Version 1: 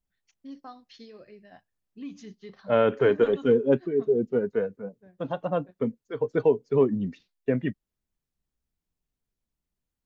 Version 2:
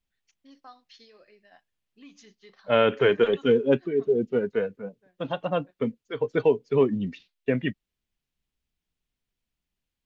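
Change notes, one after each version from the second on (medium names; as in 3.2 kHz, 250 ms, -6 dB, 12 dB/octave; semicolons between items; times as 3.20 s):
first voice: add high-pass 990 Hz 6 dB/octave; second voice: add peaking EQ 2.9 kHz +10 dB 1.4 oct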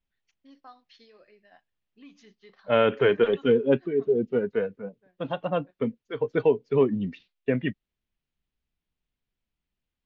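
master: add distance through air 130 m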